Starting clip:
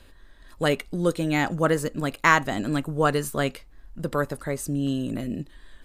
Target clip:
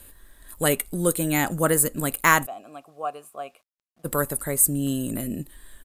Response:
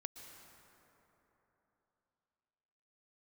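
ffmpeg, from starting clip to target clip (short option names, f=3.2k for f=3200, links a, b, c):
-filter_complex "[0:a]asplit=3[a][b][c];[a]afade=t=out:st=2.45:d=0.02[d];[b]asplit=3[e][f][g];[e]bandpass=f=730:t=q:w=8,volume=0dB[h];[f]bandpass=f=1.09k:t=q:w=8,volume=-6dB[i];[g]bandpass=f=2.44k:t=q:w=8,volume=-9dB[j];[h][i][j]amix=inputs=3:normalize=0,afade=t=in:st=2.45:d=0.02,afade=t=out:st=4.04:d=0.02[k];[c]afade=t=in:st=4.04:d=0.02[l];[d][k][l]amix=inputs=3:normalize=0,acrossover=split=3900[m][n];[n]aexciter=amount=9.4:drive=6.4:freq=7.8k[o];[m][o]amix=inputs=2:normalize=0,acrusher=bits=10:mix=0:aa=0.000001,aresample=32000,aresample=44100"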